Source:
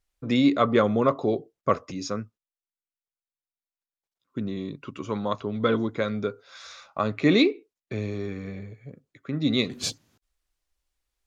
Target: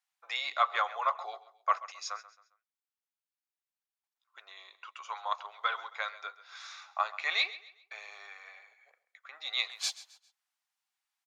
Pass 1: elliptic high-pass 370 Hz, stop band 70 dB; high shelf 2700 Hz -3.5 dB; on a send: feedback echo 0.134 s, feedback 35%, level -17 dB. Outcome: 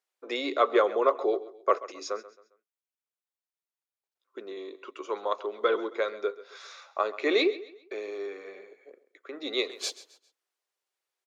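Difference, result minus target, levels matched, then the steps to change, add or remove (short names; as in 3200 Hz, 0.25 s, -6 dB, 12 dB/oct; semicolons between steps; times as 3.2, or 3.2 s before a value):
500 Hz band +15.0 dB
change: elliptic high-pass 770 Hz, stop band 70 dB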